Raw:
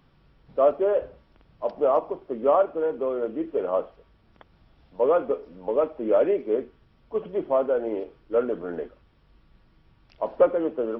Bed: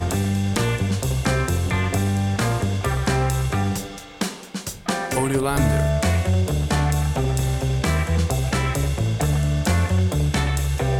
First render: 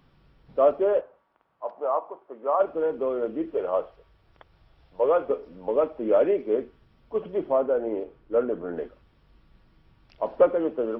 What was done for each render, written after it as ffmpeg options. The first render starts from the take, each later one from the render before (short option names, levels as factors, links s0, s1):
-filter_complex "[0:a]asplit=3[s0][s1][s2];[s0]afade=t=out:st=1:d=0.02[s3];[s1]bandpass=f=1000:t=q:w=1.5,afade=t=in:st=1:d=0.02,afade=t=out:st=2.59:d=0.02[s4];[s2]afade=t=in:st=2.59:d=0.02[s5];[s3][s4][s5]amix=inputs=3:normalize=0,asettb=1/sr,asplit=3[s6][s7][s8];[s6]atrim=end=3.544[s9];[s7]atrim=start=3.54:end=5.3,asetpts=PTS-STARTPTS,afade=t=in:d=0.004:c=qsin,afade=t=out:st=1.756:d=0.004:c=qsin,equalizer=f=230:w=2.5:g=-12.5[s10];[s8]atrim=start=5.296[s11];[s9][s10]acrossfade=d=0.004:c1=hsin:c2=qsin[s12];[s12][s11]acrossfade=d=0.004:c1=qsin:c2=hsin,asettb=1/sr,asplit=3[s13][s14][s15];[s13]atrim=end=7.524[s16];[s14]atrim=start=7.52:end=8.77,asetpts=PTS-STARTPTS,afade=t=in:d=0.004:c=qsin,afade=t=out:st=1.246:d=0.004:c=qsin,lowpass=f=1900:p=1[s17];[s15]atrim=start=8.766[s18];[s16][s17]acrossfade=d=0.004:c1=hsin:c2=qsin[s19];[s19][s18]acrossfade=d=0.004:c1=qsin:c2=hsin"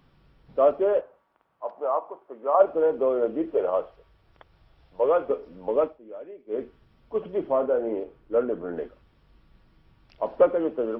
-filter_complex "[0:a]asettb=1/sr,asplit=3[s0][s1][s2];[s0]atrim=end=2.544[s3];[s1]atrim=start=2.54:end=3.7,asetpts=PTS-STARTPTS,afade=t=in:d=0.004:c=qsin,afade=t=out:st=1.156:d=0.004:c=qsin,equalizer=f=640:t=o:w=1.4:g=5[s4];[s2]atrim=start=3.696[s5];[s3][s4]acrossfade=d=0.004:c1=hsin:c2=qsin[s6];[s6][s5]acrossfade=d=0.004:c1=qsin:c2=hsin,asettb=1/sr,asplit=3[s7][s8][s9];[s7]atrim=end=7.414[s10];[s8]atrim=start=7.41:end=7.93,asetpts=PTS-STARTPTS,afade=t=in:d=0.004:c=qsin,afade=t=out:st=0.516:d=0.004:c=qsin,asplit=2[s11][s12];[s12]adelay=31,volume=0.355[s13];[s11][s13]amix=inputs=2:normalize=0,atrim=end_sample=22932[s14];[s9]atrim=start=7.926[s15];[s10][s14]acrossfade=d=0.004:c1=hsin:c2=qsin[s16];[s16][s15]acrossfade=d=0.004:c1=qsin:c2=hsin,asplit=3[s17][s18][s19];[s17]atrim=end=5.99,asetpts=PTS-STARTPTS,afade=t=out:st=5.84:d=0.15:silence=0.105925[s20];[s18]atrim=start=5.99:end=6.47,asetpts=PTS-STARTPTS,volume=0.106[s21];[s19]atrim=start=6.47,asetpts=PTS-STARTPTS,afade=t=in:d=0.15:silence=0.105925[s22];[s20][s21][s22]concat=n=3:v=0:a=1"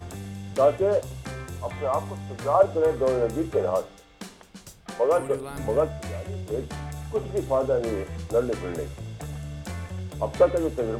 -filter_complex "[1:a]volume=0.178[s0];[0:a][s0]amix=inputs=2:normalize=0"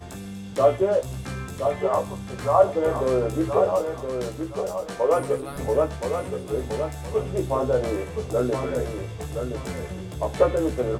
-filter_complex "[0:a]asplit=2[s0][s1];[s1]adelay=16,volume=0.668[s2];[s0][s2]amix=inputs=2:normalize=0,asplit=2[s3][s4];[s4]aecho=0:1:1020|2040|3060|4080:0.473|0.132|0.0371|0.0104[s5];[s3][s5]amix=inputs=2:normalize=0"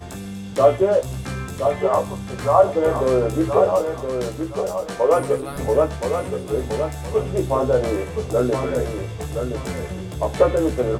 -af "volume=1.58,alimiter=limit=0.708:level=0:latency=1"